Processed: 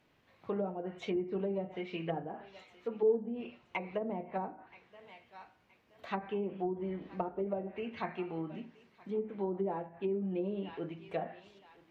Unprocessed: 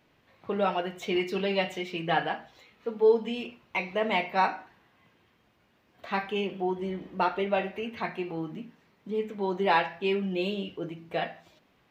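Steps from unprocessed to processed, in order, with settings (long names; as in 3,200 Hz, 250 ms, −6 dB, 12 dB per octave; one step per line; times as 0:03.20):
feedback echo with a high-pass in the loop 973 ms, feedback 32%, high-pass 230 Hz, level −23 dB
treble cut that deepens with the level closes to 450 Hz, closed at −24 dBFS
level −4.5 dB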